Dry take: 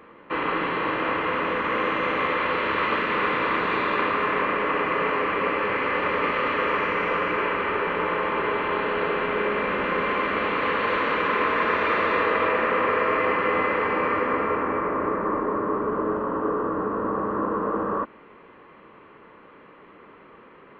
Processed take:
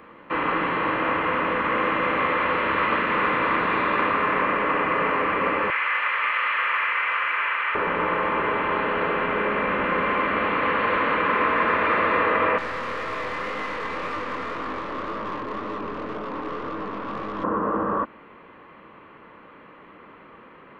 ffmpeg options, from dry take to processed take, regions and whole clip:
-filter_complex "[0:a]asettb=1/sr,asplit=3[s0][s1][s2];[s0]atrim=end=5.704[s3];[s1]atrim=start=5.7:end=7.75,asetpts=PTS-STARTPTS,afade=t=in:d=0.004:c=qsin,afade=t=out:st=2.046:d=0.004:c=qsin,highpass=1300,acrossover=split=3400[s4][s5];[s5]acompressor=threshold=0.00112:ratio=4:attack=1:release=60[s6];[s4][s6]amix=inputs=2:normalize=0,highshelf=f=2400:g=11[s7];[s2]atrim=start=7.746[s8];[s3][s7]acrossfade=d=0.004:c1=hsin:c2=qsin[s9];[s9][s8]acrossfade=d=0.004:c1=qsin:c2=hsin,asettb=1/sr,asplit=3[s10][s11][s12];[s10]atrim=end=12.584[s13];[s11]atrim=start=12.58:end=17.44,asetpts=PTS-STARTPTS,afade=t=in:d=0.004:c=qsin,afade=t=out:st=4.856:d=0.004:c=qsin,highshelf=f=2500:g=5,aeval=exprs='(tanh(20*val(0)+0.25)-tanh(0.25))/20':c=same,flanger=delay=18.5:depth=8:speed=1.9[s14];[s12]atrim=start=17.436[s15];[s13][s14]acrossfade=d=0.004:c1=hsin:c2=qsin[s16];[s16][s15]acrossfade=d=0.004:c1=qsin:c2=hsin,acontrast=65,equalizer=f=410:w=3.8:g=-5,acrossover=split=3200[s17][s18];[s18]acompressor=threshold=0.00447:ratio=4:attack=1:release=60[s19];[s17][s19]amix=inputs=2:normalize=0,volume=0.631"

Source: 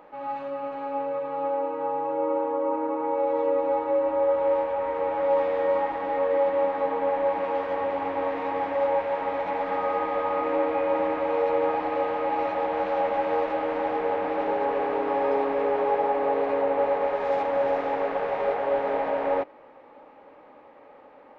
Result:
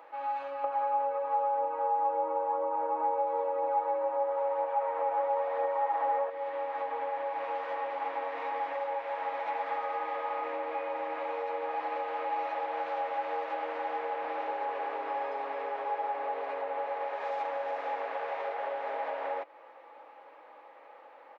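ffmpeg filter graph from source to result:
-filter_complex "[0:a]asettb=1/sr,asplit=3[s0][s1][s2];[s0]atrim=end=0.644[s3];[s1]atrim=start=0.64:end=6.3,asetpts=PTS-STARTPTS,afade=t=in:d=0.004:c=qsin,afade=t=out:st=5.656:d=0.004:c=qsin,aphaser=in_gain=1:out_gain=1:delay=4.2:decay=0.3:speed=1:type=triangular,equalizer=f=740:t=o:w=2.4:g=13.5[s4];[s2]atrim=start=6.296[s5];[s3][s4]acrossfade=d=0.004:c1=hsin:c2=qsin[s6];[s6][s5]acrossfade=d=0.004:c1=qsin:c2=hsin,acompressor=threshold=0.0316:ratio=3,highpass=630,aecho=1:1:6:0.33"

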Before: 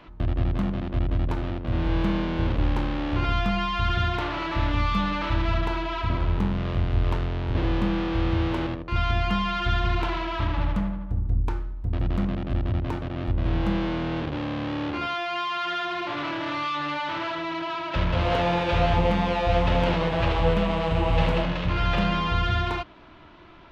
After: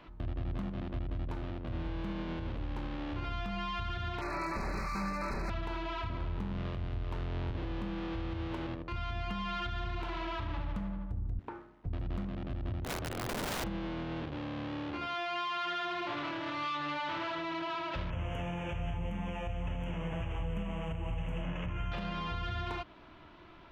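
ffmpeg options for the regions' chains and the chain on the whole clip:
-filter_complex "[0:a]asettb=1/sr,asplit=3[s0][s1][s2];[s0]atrim=end=4.214[s3];[s1]atrim=start=4.21:end=5.5,asetpts=PTS-STARTPTS,afade=t=in:d=0.004:c=qsin,afade=t=out:st=1.286:d=0.004:c=qsin,aeval=exprs='0.0841*(abs(mod(val(0)/0.0841+3,4)-2)-1)':c=same,asuperstop=centerf=3200:order=20:qfactor=2.4,aecho=1:1:5.2:0.43,atrim=end_sample=56889[s4];[s2]atrim=start=5.496[s5];[s3][s4]acrossfade=d=0.004:c1=hsin:c2=qsin[s6];[s6][s5]acrossfade=d=0.004:c1=qsin:c2=hsin,asettb=1/sr,asplit=3[s7][s8][s9];[s7]atrim=end=11.394[s10];[s8]atrim=start=11.39:end=11.86,asetpts=PTS-STARTPTS,afade=t=in:d=0.004:c=qsin,afade=t=out:st=0.466:d=0.004:c=qsin,acrusher=bits=8:mode=log:mix=0:aa=0.000001,highpass=260,lowpass=2000[s11];[s9]atrim=start=11.856[s12];[s10][s11]acrossfade=d=0.004:c1=hsin:c2=qsin[s13];[s13][s12]acrossfade=d=0.004:c1=qsin:c2=hsin,asettb=1/sr,asplit=3[s14][s15][s16];[s14]atrim=end=12.844[s17];[s15]atrim=start=12.84:end=13.64,asetpts=PTS-STARTPTS,afade=t=in:d=0.004:c=qsin,afade=t=out:st=0.796:d=0.004:c=qsin,equalizer=f=170:t=o:w=0.76:g=-4,afreqshift=20,aeval=exprs='(mod(16.8*val(0)+1,2)-1)/16.8':c=same[s18];[s16]atrim=start=13.636[s19];[s17][s18]acrossfade=d=0.004:c1=hsin:c2=qsin[s20];[s20][s19]acrossfade=d=0.004:c1=qsin:c2=hsin,asettb=1/sr,asplit=3[s21][s22][s23];[s21]atrim=end=18.104[s24];[s22]atrim=start=18.1:end=21.92,asetpts=PTS-STARTPTS,afade=t=in:d=0.004:c=qsin,afade=t=out:st=3.816:d=0.004:c=qsin,acrossover=split=220|3000[s25][s26][s27];[s26]acompressor=threshold=0.0251:ratio=6:attack=3.2:release=140:knee=2.83:detection=peak[s28];[s25][s28][s27]amix=inputs=3:normalize=0,asuperstop=centerf=4400:order=8:qfactor=1.4[s29];[s23]atrim=start=21.916[s30];[s24][s29]acrossfade=d=0.004:c1=hsin:c2=qsin[s31];[s31][s30]acrossfade=d=0.004:c1=qsin:c2=hsin,acompressor=threshold=0.0447:ratio=2,alimiter=limit=0.0794:level=0:latency=1:release=140,volume=0.531"

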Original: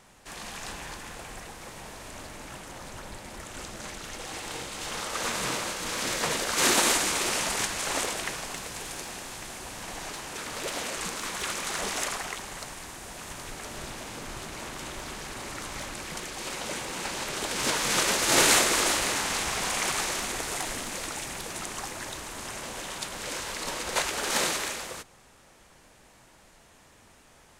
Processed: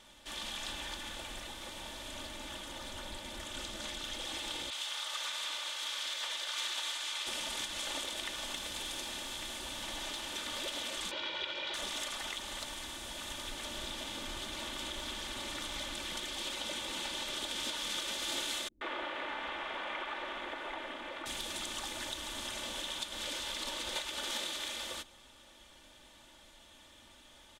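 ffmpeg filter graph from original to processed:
-filter_complex "[0:a]asettb=1/sr,asplit=3[s0][s1][s2];[s0]atrim=end=4.704[s3];[s1]atrim=start=4.7:end=7.27,asetpts=PTS-STARTPTS,afade=t=in:d=0.004:c=qsin,afade=t=out:st=2.566:d=0.004:c=qsin,highpass=850,adynamicequalizer=threshold=0.0112:dfrequency=7600:dqfactor=0.7:tfrequency=7600:tqfactor=0.7:attack=5:release=100:ratio=0.375:range=3.5:mode=cutabove:tftype=highshelf[s4];[s2]atrim=start=7.266[s5];[s3][s4]acrossfade=d=0.004:c1=hsin:c2=qsin[s6];[s6][s5]acrossfade=d=0.004:c1=qsin:c2=hsin,asettb=1/sr,asplit=3[s7][s8][s9];[s7]atrim=end=11.114[s10];[s8]atrim=start=11.11:end=11.74,asetpts=PTS-STARTPTS,afade=t=in:d=0.004:c=qsin,afade=t=out:st=0.626:d=0.004:c=qsin,highpass=100,equalizer=f=320:t=q:w=4:g=4,equalizer=f=630:t=q:w=4:g=7,equalizer=f=2500:t=q:w=4:g=4,lowpass=f=4200:w=0.5412,lowpass=f=4200:w=1.3066,aecho=1:1:2.1:0.64,atrim=end_sample=27783[s11];[s9]atrim=start=11.736[s12];[s10][s11]acrossfade=d=0.004:c1=hsin:c2=qsin[s13];[s13][s12]acrossfade=d=0.004:c1=qsin:c2=hsin,asettb=1/sr,asplit=3[s14][s15][s16];[s14]atrim=end=18.684[s17];[s15]atrim=start=18.68:end=21.26,asetpts=PTS-STARTPTS,afade=t=in:d=0.004:c=qsin,afade=t=out:st=2.576:d=0.004:c=qsin,acrossover=split=3500[s18][s19];[s19]acompressor=threshold=0.00891:ratio=4:attack=1:release=60[s20];[s18][s20]amix=inputs=2:normalize=0,acrossover=split=280 2500:gain=0.2 1 0.0794[s21][s22][s23];[s21][s22][s23]amix=inputs=3:normalize=0,acrossover=split=170[s24][s25];[s25]adelay=130[s26];[s24][s26]amix=inputs=2:normalize=0,atrim=end_sample=113778[s27];[s16]atrim=start=21.256[s28];[s17][s27]acrossfade=d=0.004:c1=hsin:c2=qsin[s29];[s29][s28]acrossfade=d=0.004:c1=qsin:c2=hsin,equalizer=f=3400:w=3.3:g=14,aecho=1:1:3.4:0.6,acompressor=threshold=0.0316:ratio=6,volume=0.531"

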